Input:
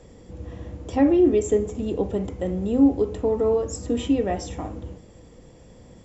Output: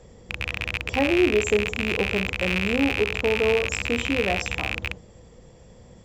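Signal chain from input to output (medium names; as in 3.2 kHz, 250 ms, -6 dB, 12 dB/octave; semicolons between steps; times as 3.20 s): rattle on loud lows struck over -34 dBFS, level -12 dBFS; peaking EQ 290 Hz -8.5 dB 0.38 oct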